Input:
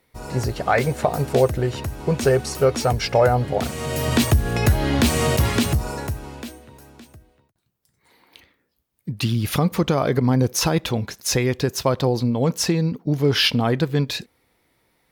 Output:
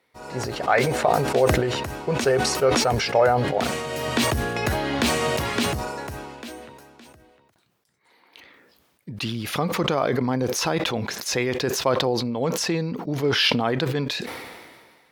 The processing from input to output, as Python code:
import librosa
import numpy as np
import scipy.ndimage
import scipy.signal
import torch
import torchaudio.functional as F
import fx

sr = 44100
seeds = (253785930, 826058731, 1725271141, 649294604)

y = fx.highpass(x, sr, hz=430.0, slope=6)
y = fx.high_shelf(y, sr, hz=7300.0, db=-12.0)
y = fx.sustainer(y, sr, db_per_s=34.0)